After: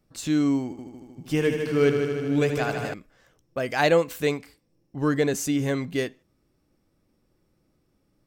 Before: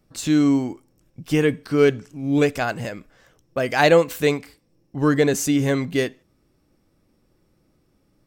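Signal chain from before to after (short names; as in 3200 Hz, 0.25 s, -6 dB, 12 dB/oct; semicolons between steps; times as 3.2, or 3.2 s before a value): 0.63–2.94 multi-head echo 77 ms, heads first and second, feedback 71%, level -9.5 dB; gain -5 dB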